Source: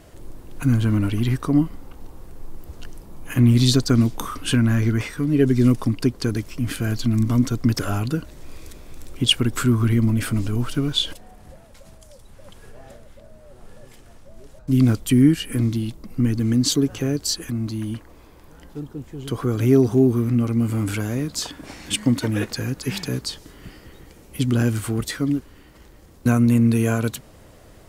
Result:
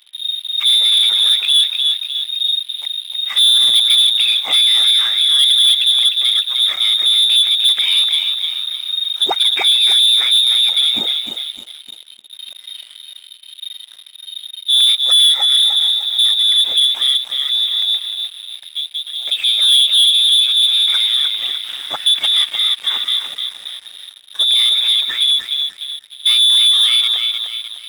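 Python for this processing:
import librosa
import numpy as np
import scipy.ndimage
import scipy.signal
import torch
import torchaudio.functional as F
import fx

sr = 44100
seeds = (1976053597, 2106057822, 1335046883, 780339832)

p1 = fx.high_shelf(x, sr, hz=2000.0, db=7.5)
p2 = p1 + fx.echo_feedback(p1, sr, ms=302, feedback_pct=43, wet_db=-7, dry=0)
p3 = fx.freq_invert(p2, sr, carrier_hz=3700)
p4 = np.diff(p3, prepend=0.0)
p5 = fx.leveller(p4, sr, passes=3)
y = p5 * 10.0 ** (3.0 / 20.0)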